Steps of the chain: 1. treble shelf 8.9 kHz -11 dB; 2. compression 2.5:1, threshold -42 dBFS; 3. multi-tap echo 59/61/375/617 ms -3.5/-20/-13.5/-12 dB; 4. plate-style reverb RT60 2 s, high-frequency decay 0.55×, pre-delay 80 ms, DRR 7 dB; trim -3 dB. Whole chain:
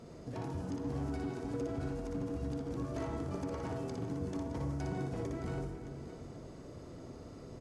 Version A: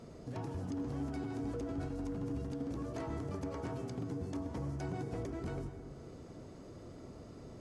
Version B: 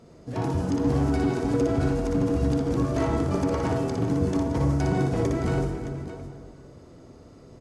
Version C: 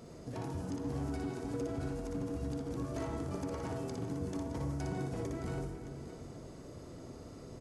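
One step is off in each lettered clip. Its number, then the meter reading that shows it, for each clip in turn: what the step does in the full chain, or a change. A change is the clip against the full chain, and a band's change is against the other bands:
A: 3, echo-to-direct -0.5 dB to -7.0 dB; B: 2, mean gain reduction 10.0 dB; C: 1, 8 kHz band +4.0 dB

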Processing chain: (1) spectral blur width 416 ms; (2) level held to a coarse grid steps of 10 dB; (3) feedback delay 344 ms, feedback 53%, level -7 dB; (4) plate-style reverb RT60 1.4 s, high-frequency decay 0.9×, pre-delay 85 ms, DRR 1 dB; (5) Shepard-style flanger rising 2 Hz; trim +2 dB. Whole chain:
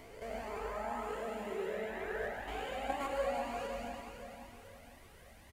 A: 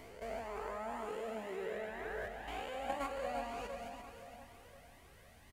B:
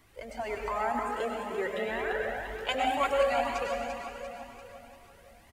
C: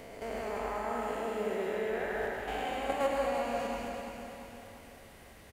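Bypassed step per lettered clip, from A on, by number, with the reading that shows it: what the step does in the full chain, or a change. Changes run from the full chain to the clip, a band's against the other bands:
4, loudness change -2.5 LU; 1, 125 Hz band -5.5 dB; 5, loudness change +5.0 LU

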